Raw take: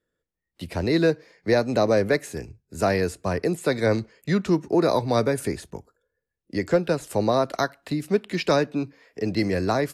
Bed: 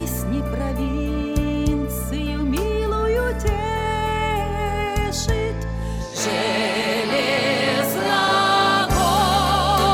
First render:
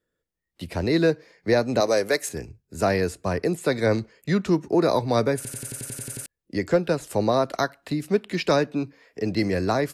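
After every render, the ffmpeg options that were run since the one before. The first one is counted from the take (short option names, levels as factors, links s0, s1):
-filter_complex "[0:a]asettb=1/sr,asplit=3[s0][s1][s2];[s0]atrim=end=1.804[s3];[s1]atrim=start=1.8:end=2.29,asetpts=PTS-STARTPTS,afade=t=in:d=0.004:c=qsin,afade=t=out:st=0.486:d=0.004:c=qsin,bass=f=250:g=-14,treble=f=4000:g=10[s4];[s2]atrim=start=2.286[s5];[s3][s4]acrossfade=d=0.004:c1=hsin:c2=qsin[s6];[s6][s5]acrossfade=d=0.004:c1=qsin:c2=hsin,asplit=11[s7][s8][s9][s10][s11][s12][s13][s14][s15][s16][s17];[s7]atrim=end=5.452[s18];[s8]atrim=start=5.358:end=5.452[s19];[s9]atrim=start=5.358:end=5.452[s20];[s10]atrim=start=5.358:end=5.452[s21];[s11]atrim=start=5.358:end=5.452[s22];[s12]atrim=start=5.358:end=5.452[s23];[s13]atrim=start=5.358:end=5.452[s24];[s14]atrim=start=5.358:end=5.452[s25];[s15]atrim=start=5.358:end=5.452[s26];[s16]atrim=start=5.358:end=5.452[s27];[s17]atrim=start=6.258[s28];[s18][s19]acrossfade=d=0.004:c1=hsin:c2=hsin[s29];[s29][s20]acrossfade=d=0.004:c1=hsin:c2=hsin[s30];[s30][s21]acrossfade=d=0.004:c1=hsin:c2=hsin[s31];[s31][s22]acrossfade=d=0.004:c1=hsin:c2=hsin[s32];[s32][s23]acrossfade=d=0.004:c1=hsin:c2=hsin[s33];[s33][s24]acrossfade=d=0.004:c1=hsin:c2=hsin[s34];[s34][s25]acrossfade=d=0.004:c1=hsin:c2=hsin[s35];[s35][s26]acrossfade=d=0.004:c1=hsin:c2=hsin[s36];[s36][s27]acrossfade=d=0.004:c1=hsin:c2=hsin[s37];[s37][s28]acrossfade=d=0.004:c1=hsin:c2=hsin"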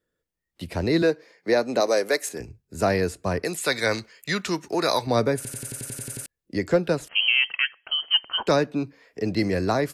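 -filter_complex "[0:a]asettb=1/sr,asplit=3[s0][s1][s2];[s0]atrim=end=1.024[s3];[s1]atrim=start=1.02:end=2.4,asetpts=PTS-STARTPTS,afade=t=in:d=0.004:c=qsin,afade=t=out:st=1.376:d=0.004:c=qsin,highpass=250[s4];[s2]atrim=start=2.396[s5];[s3][s4]acrossfade=d=0.004:c1=hsin:c2=qsin[s6];[s6][s5]acrossfade=d=0.004:c1=qsin:c2=hsin,asettb=1/sr,asplit=3[s7][s8][s9];[s7]atrim=end=3.444[s10];[s8]atrim=start=3.44:end=5.07,asetpts=PTS-STARTPTS,afade=t=in:d=0.004:c=qsin,afade=t=out:st=1.626:d=0.004:c=qsin,tiltshelf=f=830:g=-9[s11];[s9]atrim=start=5.066[s12];[s10][s11]acrossfade=d=0.004:c1=hsin:c2=qsin[s13];[s13][s12]acrossfade=d=0.004:c1=qsin:c2=hsin,asettb=1/sr,asplit=3[s14][s15][s16];[s14]atrim=end=7.084[s17];[s15]atrim=start=7.08:end=8.47,asetpts=PTS-STARTPTS,afade=t=in:d=0.004:c=qsin,afade=t=out:st=1.386:d=0.004:c=qsin,lowpass=f=2800:t=q:w=0.5098,lowpass=f=2800:t=q:w=0.6013,lowpass=f=2800:t=q:w=0.9,lowpass=f=2800:t=q:w=2.563,afreqshift=-3300[s18];[s16]atrim=start=8.466[s19];[s17][s18]acrossfade=d=0.004:c1=hsin:c2=qsin[s20];[s20][s19]acrossfade=d=0.004:c1=qsin:c2=hsin"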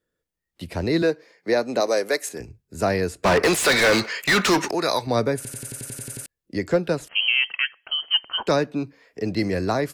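-filter_complex "[0:a]asettb=1/sr,asplit=3[s0][s1][s2];[s0]atrim=end=3.234[s3];[s1]atrim=start=3.23:end=4.71,asetpts=PTS-STARTPTS,afade=t=in:d=0.004:c=qsin,afade=t=out:st=1.476:d=0.004:c=qsin,asplit=2[s4][s5];[s5]highpass=f=720:p=1,volume=35.5,asoftclip=type=tanh:threshold=0.335[s6];[s4][s6]amix=inputs=2:normalize=0,lowpass=f=3300:p=1,volume=0.501[s7];[s2]atrim=start=4.706[s8];[s3][s7]acrossfade=d=0.004:c1=hsin:c2=qsin[s9];[s9][s8]acrossfade=d=0.004:c1=qsin:c2=hsin,asettb=1/sr,asplit=3[s10][s11][s12];[s10]atrim=end=7.144[s13];[s11]atrim=start=7.14:end=7.59,asetpts=PTS-STARTPTS,afade=t=in:d=0.004:c=qsin,afade=t=out:st=0.446:d=0.004:c=qsin,highpass=f=130:w=0.5412,highpass=f=130:w=1.3066[s14];[s12]atrim=start=7.586[s15];[s13][s14]acrossfade=d=0.004:c1=hsin:c2=qsin[s16];[s16][s15]acrossfade=d=0.004:c1=qsin:c2=hsin"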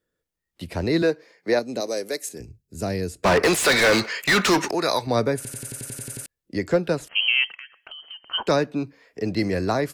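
-filter_complex "[0:a]asettb=1/sr,asplit=3[s0][s1][s2];[s0]atrim=end=1.594[s3];[s1]atrim=start=1.59:end=3.23,asetpts=PTS-STARTPTS,afade=t=in:d=0.004:c=qsin,afade=t=out:st=1.636:d=0.004:c=qsin,equalizer=f=1200:w=0.52:g=-11.5[s4];[s2]atrim=start=3.226[s5];[s3][s4]acrossfade=d=0.004:c1=hsin:c2=qsin[s6];[s6][s5]acrossfade=d=0.004:c1=qsin:c2=hsin,asettb=1/sr,asplit=3[s7][s8][s9];[s7]atrim=end=7.484[s10];[s8]atrim=start=7.48:end=8.32,asetpts=PTS-STARTPTS,afade=t=in:d=0.004:c=qsin,afade=t=out:st=0.836:d=0.004:c=qsin,acompressor=threshold=0.0158:ratio=16:attack=3.2:release=140:knee=1:detection=peak[s11];[s9]atrim=start=8.316[s12];[s10][s11]acrossfade=d=0.004:c1=hsin:c2=qsin[s13];[s13][s12]acrossfade=d=0.004:c1=qsin:c2=hsin"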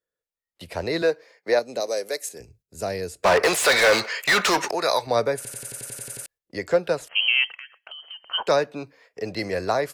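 -af "agate=range=0.355:threshold=0.00251:ratio=16:detection=peak,lowshelf=f=390:t=q:w=1.5:g=-7.5"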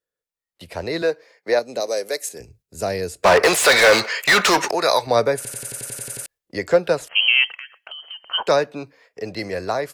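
-af "dynaudnorm=f=330:g=11:m=1.78"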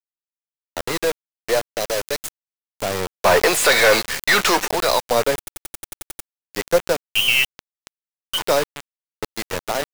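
-af "aeval=exprs='if(lt(val(0),0),0.708*val(0),val(0))':c=same,acrusher=bits=3:mix=0:aa=0.000001"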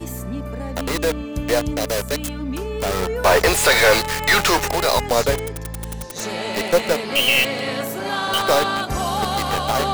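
-filter_complex "[1:a]volume=0.562[s0];[0:a][s0]amix=inputs=2:normalize=0"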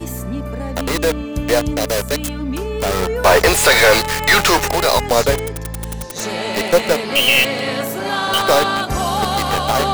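-af "volume=1.5,alimiter=limit=0.891:level=0:latency=1"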